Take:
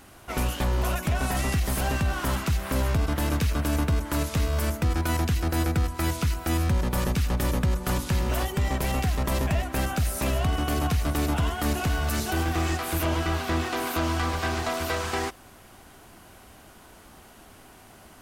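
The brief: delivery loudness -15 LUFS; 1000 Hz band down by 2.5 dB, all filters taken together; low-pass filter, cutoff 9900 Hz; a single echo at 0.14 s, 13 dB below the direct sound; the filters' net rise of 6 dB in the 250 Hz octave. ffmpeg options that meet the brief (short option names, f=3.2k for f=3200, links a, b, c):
-af "lowpass=9.9k,equalizer=f=250:t=o:g=8,equalizer=f=1k:t=o:g=-4,aecho=1:1:140:0.224,volume=10dB"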